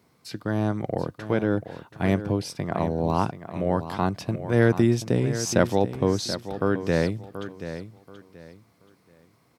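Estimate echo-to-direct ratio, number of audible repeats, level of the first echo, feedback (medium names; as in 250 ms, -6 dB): -11.0 dB, 3, -11.5 dB, 26%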